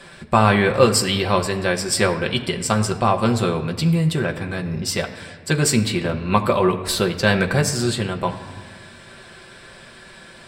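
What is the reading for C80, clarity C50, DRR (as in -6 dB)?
12.5 dB, 11.5 dB, 2.5 dB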